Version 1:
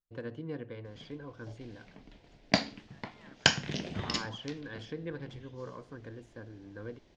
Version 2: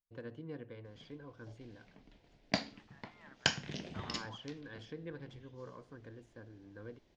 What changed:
first voice −6.0 dB
background −7.0 dB

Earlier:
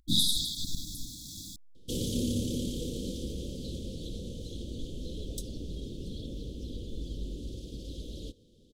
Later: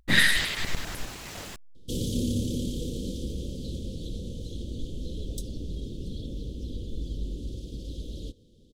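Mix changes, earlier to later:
speech: remove linear-phase brick-wall band-stop 330–3,300 Hz
master: add low-shelf EQ 220 Hz +5 dB

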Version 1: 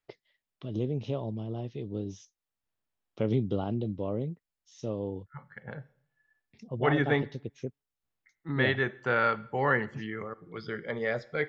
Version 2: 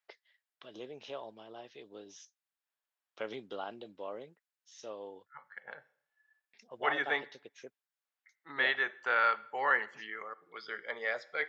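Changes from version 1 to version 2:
first voice: add parametric band 1,600 Hz +7.5 dB 0.4 octaves
master: add high-pass filter 780 Hz 12 dB per octave

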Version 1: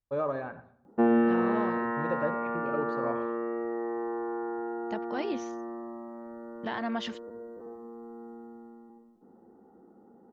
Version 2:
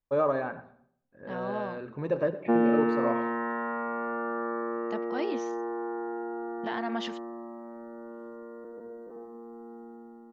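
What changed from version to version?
first voice +5.0 dB
background: entry +1.50 s
master: add parametric band 83 Hz −10.5 dB 0.92 octaves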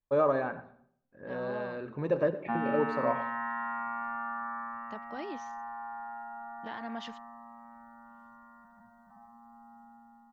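second voice −7.0 dB
background: add elliptic band-stop filter 200–760 Hz, stop band 50 dB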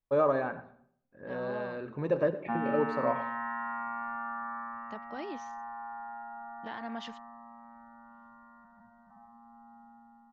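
background: add high-frequency loss of the air 170 metres

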